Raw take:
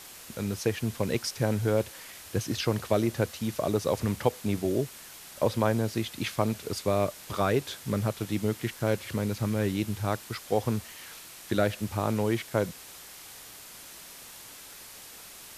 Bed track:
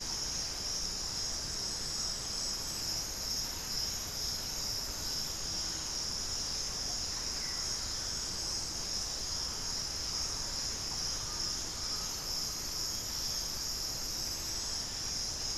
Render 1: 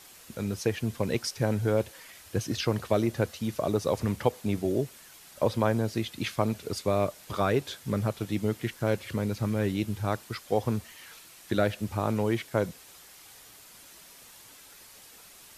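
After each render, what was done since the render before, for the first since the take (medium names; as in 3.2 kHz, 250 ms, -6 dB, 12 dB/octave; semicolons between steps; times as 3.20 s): noise reduction 6 dB, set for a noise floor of -47 dBFS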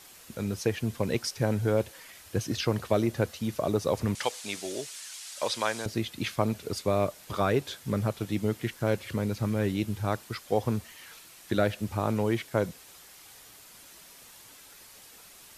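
4.15–5.86 s: frequency weighting ITU-R 468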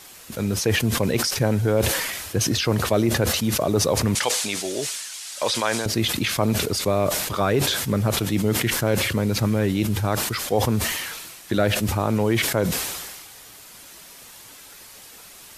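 in parallel at +2 dB: peak limiter -20.5 dBFS, peak gain reduction 9.5 dB; on the sum: decay stretcher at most 36 dB/s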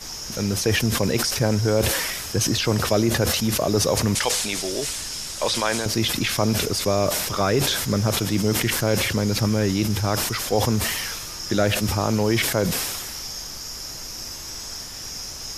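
add bed track +2.5 dB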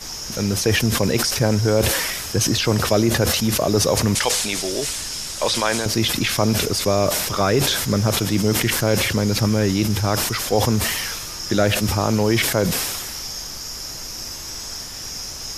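trim +2.5 dB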